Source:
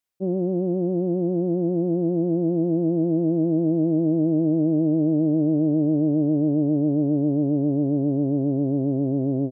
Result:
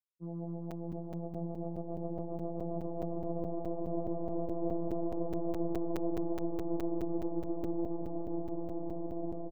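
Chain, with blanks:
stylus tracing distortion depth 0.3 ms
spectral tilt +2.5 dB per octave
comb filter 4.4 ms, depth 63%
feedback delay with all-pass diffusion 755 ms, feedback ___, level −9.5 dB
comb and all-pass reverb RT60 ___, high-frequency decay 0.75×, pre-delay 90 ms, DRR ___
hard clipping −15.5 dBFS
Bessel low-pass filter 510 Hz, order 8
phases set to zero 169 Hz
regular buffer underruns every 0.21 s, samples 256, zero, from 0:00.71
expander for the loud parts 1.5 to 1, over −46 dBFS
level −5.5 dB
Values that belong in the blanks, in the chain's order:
69%, 0.6 s, 12.5 dB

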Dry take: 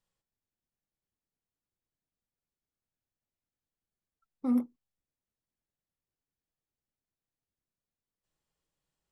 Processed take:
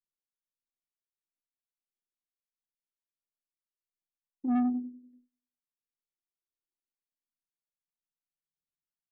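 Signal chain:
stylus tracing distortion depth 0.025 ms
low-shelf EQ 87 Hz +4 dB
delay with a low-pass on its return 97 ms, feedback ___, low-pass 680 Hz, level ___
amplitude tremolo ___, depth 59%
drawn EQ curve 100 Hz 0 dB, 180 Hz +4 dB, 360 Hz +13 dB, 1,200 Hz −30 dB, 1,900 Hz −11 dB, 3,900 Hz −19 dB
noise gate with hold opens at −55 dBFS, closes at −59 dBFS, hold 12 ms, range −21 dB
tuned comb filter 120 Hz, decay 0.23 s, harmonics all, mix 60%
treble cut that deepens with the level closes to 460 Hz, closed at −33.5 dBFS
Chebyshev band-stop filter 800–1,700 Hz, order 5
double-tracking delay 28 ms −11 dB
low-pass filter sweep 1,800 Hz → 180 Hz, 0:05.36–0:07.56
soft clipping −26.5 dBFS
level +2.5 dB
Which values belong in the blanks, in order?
47%, −6.5 dB, 1.5 Hz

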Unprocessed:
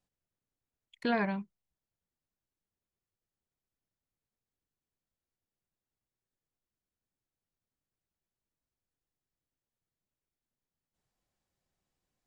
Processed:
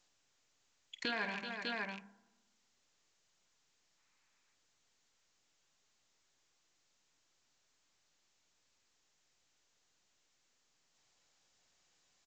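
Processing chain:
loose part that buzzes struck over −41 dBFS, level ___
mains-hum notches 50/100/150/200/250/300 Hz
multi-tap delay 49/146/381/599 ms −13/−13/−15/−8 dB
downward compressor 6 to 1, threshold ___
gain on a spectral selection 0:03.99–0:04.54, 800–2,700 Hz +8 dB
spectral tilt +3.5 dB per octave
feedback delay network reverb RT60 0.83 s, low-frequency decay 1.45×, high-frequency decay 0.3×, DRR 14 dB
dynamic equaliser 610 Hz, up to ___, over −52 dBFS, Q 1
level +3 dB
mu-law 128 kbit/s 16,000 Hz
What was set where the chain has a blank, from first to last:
−35 dBFS, −35 dBFS, −4 dB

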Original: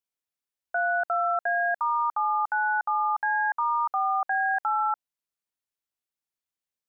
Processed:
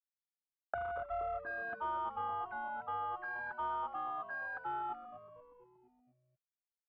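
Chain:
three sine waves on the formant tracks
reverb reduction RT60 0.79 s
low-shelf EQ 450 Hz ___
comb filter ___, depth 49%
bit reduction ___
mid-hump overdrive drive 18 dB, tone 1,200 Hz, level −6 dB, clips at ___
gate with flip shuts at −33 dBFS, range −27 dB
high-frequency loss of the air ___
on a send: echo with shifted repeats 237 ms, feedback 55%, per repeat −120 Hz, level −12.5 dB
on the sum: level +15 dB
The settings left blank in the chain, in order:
−11.5 dB, 3.2 ms, 10 bits, −15.5 dBFS, 480 metres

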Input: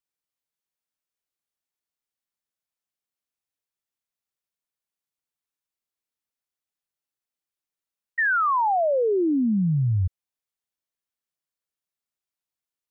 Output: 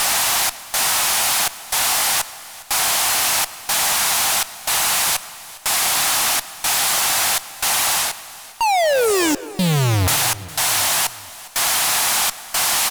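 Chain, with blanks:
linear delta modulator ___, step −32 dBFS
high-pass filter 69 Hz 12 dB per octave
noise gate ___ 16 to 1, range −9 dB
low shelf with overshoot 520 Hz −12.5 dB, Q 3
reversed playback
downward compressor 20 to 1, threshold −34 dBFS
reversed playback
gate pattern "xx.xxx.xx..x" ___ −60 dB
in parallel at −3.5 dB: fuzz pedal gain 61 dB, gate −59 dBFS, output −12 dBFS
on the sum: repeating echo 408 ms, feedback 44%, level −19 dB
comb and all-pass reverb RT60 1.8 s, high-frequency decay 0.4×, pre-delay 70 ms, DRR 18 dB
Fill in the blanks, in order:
64 kbit/s, −32 dBFS, 61 BPM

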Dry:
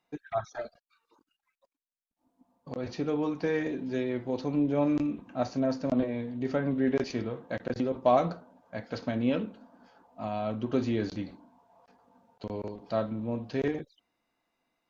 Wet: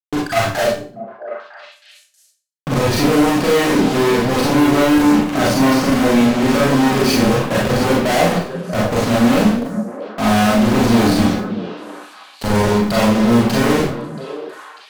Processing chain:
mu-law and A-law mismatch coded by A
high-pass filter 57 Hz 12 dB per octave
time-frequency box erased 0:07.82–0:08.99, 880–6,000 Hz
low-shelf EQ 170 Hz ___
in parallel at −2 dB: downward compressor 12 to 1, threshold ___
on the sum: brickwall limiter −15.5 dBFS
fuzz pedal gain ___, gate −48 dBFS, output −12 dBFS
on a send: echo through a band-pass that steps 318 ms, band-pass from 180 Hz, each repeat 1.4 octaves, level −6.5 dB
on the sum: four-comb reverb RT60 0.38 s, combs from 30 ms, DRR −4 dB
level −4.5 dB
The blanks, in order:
+6 dB, −36 dBFS, 49 dB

